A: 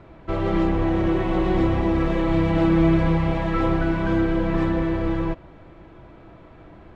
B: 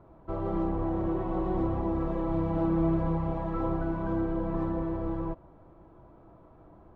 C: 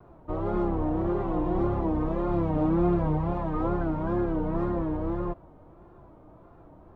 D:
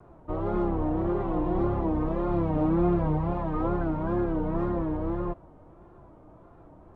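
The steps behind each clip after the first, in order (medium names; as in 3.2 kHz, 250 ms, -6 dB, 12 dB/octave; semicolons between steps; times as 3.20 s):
resonant high shelf 1.5 kHz -11 dB, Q 1.5; trim -9 dB
wow and flutter 120 cents; trim +2.5 dB
Nellymoser 44 kbps 22.05 kHz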